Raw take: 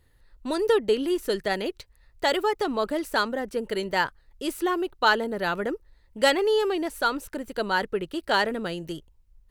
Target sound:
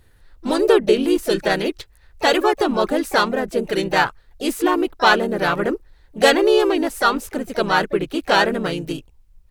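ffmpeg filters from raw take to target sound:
ffmpeg -i in.wav -filter_complex "[0:a]acontrast=84,asplit=3[link_01][link_02][link_03];[link_02]asetrate=37084,aresample=44100,atempo=1.18921,volume=-4dB[link_04];[link_03]asetrate=58866,aresample=44100,atempo=0.749154,volume=-14dB[link_05];[link_01][link_04][link_05]amix=inputs=3:normalize=0,volume=-1dB" out.wav

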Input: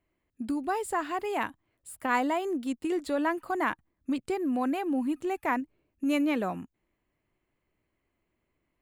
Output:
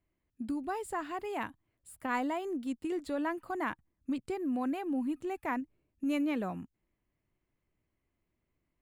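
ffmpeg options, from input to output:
ffmpeg -i in.wav -af "bass=frequency=250:gain=6,treble=frequency=4000:gain=-1,volume=-6.5dB" out.wav

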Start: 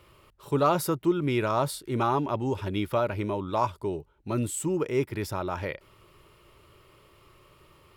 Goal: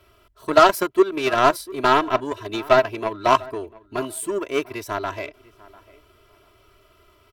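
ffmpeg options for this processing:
ffmpeg -i in.wav -filter_complex "[0:a]aecho=1:1:3.3:0.89,acrossover=split=310[link_01][link_02];[link_01]acompressor=threshold=-39dB:ratio=6[link_03];[link_03][link_02]amix=inputs=2:normalize=0,aeval=exprs='0.398*(cos(1*acos(clip(val(0)/0.398,-1,1)))-cos(1*PI/2))+0.0398*(cos(7*acos(clip(val(0)/0.398,-1,1)))-cos(7*PI/2))':channel_layout=same,asplit=2[link_04][link_05];[link_05]adelay=757,lowpass=frequency=2000:poles=1,volume=-21dB,asplit=2[link_06][link_07];[link_07]adelay=757,lowpass=frequency=2000:poles=1,volume=0.23[link_08];[link_04][link_06][link_08]amix=inputs=3:normalize=0,asetrate=48000,aresample=44100,alimiter=level_in=9.5dB:limit=-1dB:release=50:level=0:latency=1,volume=-1dB" out.wav

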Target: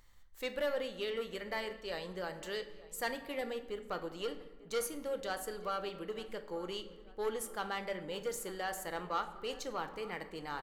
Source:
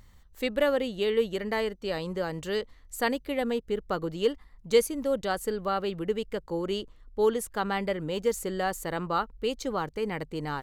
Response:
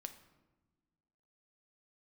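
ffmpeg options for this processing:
-filter_complex "[0:a]asoftclip=type=tanh:threshold=-19.5dB,equalizer=frequency=130:width=0.39:gain=-12,asplit=2[link_01][link_02];[link_02]adelay=894,lowpass=frequency=2500:poles=1,volume=-18.5dB,asplit=2[link_03][link_04];[link_04]adelay=894,lowpass=frequency=2500:poles=1,volume=0.52,asplit=2[link_05][link_06];[link_06]adelay=894,lowpass=frequency=2500:poles=1,volume=0.52,asplit=2[link_07][link_08];[link_08]adelay=894,lowpass=frequency=2500:poles=1,volume=0.52[link_09];[link_01][link_03][link_05][link_07][link_09]amix=inputs=5:normalize=0[link_10];[1:a]atrim=start_sample=2205[link_11];[link_10][link_11]afir=irnorm=-1:irlink=0"

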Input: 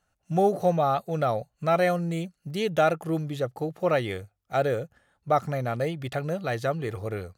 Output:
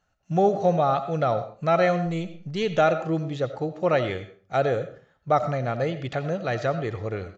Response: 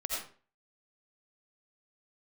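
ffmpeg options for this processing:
-filter_complex "[0:a]asettb=1/sr,asplit=3[link_01][link_02][link_03];[link_01]atrim=end=2.064[link_04];[link_02]atrim=start=2.06:end=2.63,asetpts=PTS-STARTPTS,afade=type=in:duration=0.004:curve=qsin,afade=type=out:start_time=0.566:duration=0.004:curve=qsin,aeval=exprs='0.15*(cos(1*acos(clip(val(0)/0.15,-1,1)))-cos(1*PI/2))+0.00473*(cos(6*acos(clip(val(0)/0.15,-1,1)))-cos(6*PI/2))':channel_layout=same[link_05];[link_03]atrim=start=2.626[link_06];[link_04][link_05]acrossfade=duration=0.004:curve1=hsin:curve2=qsin[link_07];[link_07][link_06]acrossfade=duration=0.004:curve1=qsin:curve2=hsin,asplit=2[link_08][link_09];[1:a]atrim=start_sample=2205,lowpass=6000[link_10];[link_09][link_10]afir=irnorm=-1:irlink=0,volume=-11.5dB[link_11];[link_08][link_11]amix=inputs=2:normalize=0,aresample=16000,aresample=44100"

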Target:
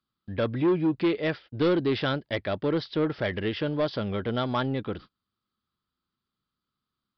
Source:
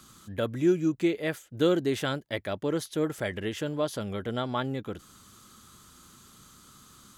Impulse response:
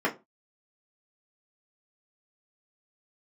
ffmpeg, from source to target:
-af "agate=range=-35dB:threshold=-46dB:ratio=16:detection=peak,aresample=11025,asoftclip=type=tanh:threshold=-22.5dB,aresample=44100,volume=4.5dB"

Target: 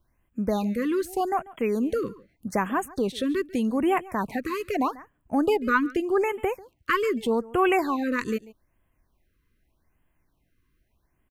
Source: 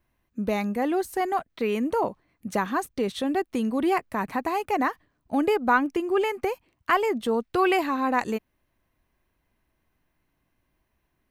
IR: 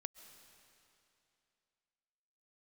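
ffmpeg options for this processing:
-af "lowshelf=frequency=100:gain=6.5,aecho=1:1:142:0.0944,afftfilt=real='re*(1-between(b*sr/1024,690*pow(5000/690,0.5+0.5*sin(2*PI*0.82*pts/sr))/1.41,690*pow(5000/690,0.5+0.5*sin(2*PI*0.82*pts/sr))*1.41))':imag='im*(1-between(b*sr/1024,690*pow(5000/690,0.5+0.5*sin(2*PI*0.82*pts/sr))/1.41,690*pow(5000/690,0.5+0.5*sin(2*PI*0.82*pts/sr))*1.41))':win_size=1024:overlap=0.75"

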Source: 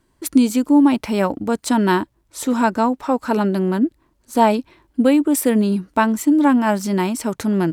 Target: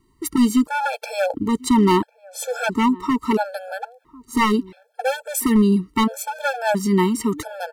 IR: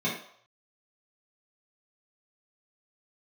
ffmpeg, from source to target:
-filter_complex "[0:a]asplit=2[link_01][link_02];[link_02]adelay=1050,volume=-24dB,highshelf=frequency=4000:gain=-23.6[link_03];[link_01][link_03]amix=inputs=2:normalize=0,aeval=exprs='0.266*(abs(mod(val(0)/0.266+3,4)-2)-1)':channel_layout=same,afftfilt=real='re*gt(sin(2*PI*0.74*pts/sr)*(1-2*mod(floor(b*sr/1024/450),2)),0)':imag='im*gt(sin(2*PI*0.74*pts/sr)*(1-2*mod(floor(b*sr/1024/450),2)),0)':win_size=1024:overlap=0.75,volume=2.5dB"

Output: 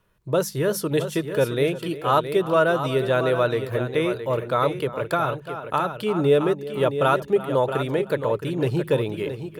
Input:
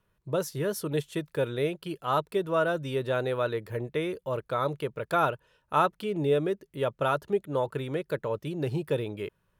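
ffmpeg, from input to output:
ffmpeg -i in.wav -filter_complex "[0:a]bandreject=frequency=50:width_type=h:width=6,bandreject=frequency=100:width_type=h:width=6,bandreject=frequency=150:width_type=h:width=6,bandreject=frequency=200:width_type=h:width=6,asplit=2[link_01][link_02];[link_02]adelay=344,volume=-16dB,highshelf=frequency=4000:gain=-7.74[link_03];[link_01][link_03]amix=inputs=2:normalize=0,asettb=1/sr,asplit=3[link_04][link_05][link_06];[link_04]atrim=end=4.794[link_07];[link_05]atrim=start=4.79:end=5.97,asetpts=PTS-STARTPTS,afade=type=in:duration=0.004:curve=qsin,afade=type=out:start_time=1.176:duration=0.004:curve=qsin,acrossover=split=180[link_08][link_09];[link_09]acompressor=threshold=-26dB:ratio=10[link_10];[link_08][link_10]amix=inputs=2:normalize=0[link_11];[link_06]atrim=start=5.966[link_12];[link_07][link_11]acrossfade=duration=0.004:curve1=hsin:curve2=qsin[link_13];[link_13][link_12]acrossfade=duration=0.004:curve1=qsin:curve2=hsin,asplit=2[link_14][link_15];[link_15]aecho=0:1:669:0.335[link_16];[link_14][link_16]amix=inputs=2:normalize=0,volume=7dB" out.wav

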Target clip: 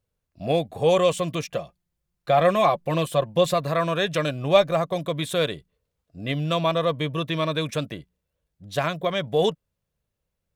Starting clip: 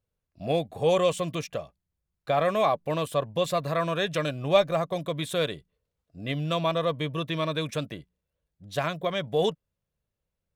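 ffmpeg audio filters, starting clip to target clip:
ffmpeg -i in.wav -filter_complex "[0:a]asettb=1/sr,asplit=3[link_01][link_02][link_03];[link_01]atrim=end=1.534[link_04];[link_02]atrim=start=1.53:end=3.54,asetpts=PTS-STARTPTS,afade=type=in:duration=0.004:curve=qsin,afade=type=out:start_time=2.006:duration=0.004:curve=qsin,aecho=1:1:5.7:0.52,atrim=end_sample=88641[link_05];[link_03]atrim=start=3.536[link_06];[link_04][link_05]acrossfade=duration=0.004:curve1=hsin:curve2=qsin[link_07];[link_07][link_06]acrossfade=duration=0.004:curve1=qsin:curve2=hsin,volume=3.5dB" out.wav

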